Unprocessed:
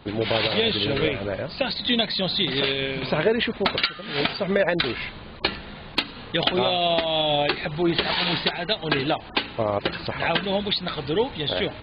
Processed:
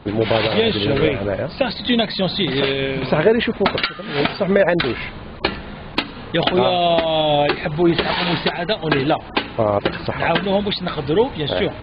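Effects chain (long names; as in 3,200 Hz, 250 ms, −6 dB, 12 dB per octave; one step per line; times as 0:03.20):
high-shelf EQ 3,000 Hz −11 dB
level +7 dB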